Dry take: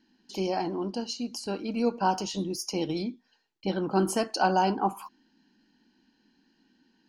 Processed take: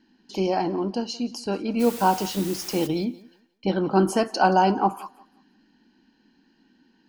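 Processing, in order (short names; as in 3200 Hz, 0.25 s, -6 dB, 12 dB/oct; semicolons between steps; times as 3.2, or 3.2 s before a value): high shelf 4700 Hz -8 dB; 1.79–2.86 added noise white -44 dBFS; on a send: thinning echo 0.176 s, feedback 26%, high-pass 190 Hz, level -20 dB; on the sum: gain +5.5 dB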